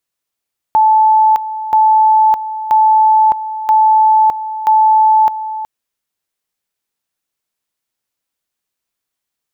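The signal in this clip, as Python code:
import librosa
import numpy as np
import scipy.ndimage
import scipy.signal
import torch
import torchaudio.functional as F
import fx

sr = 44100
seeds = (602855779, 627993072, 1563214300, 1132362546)

y = fx.two_level_tone(sr, hz=871.0, level_db=-6.0, drop_db=13.0, high_s=0.61, low_s=0.37, rounds=5)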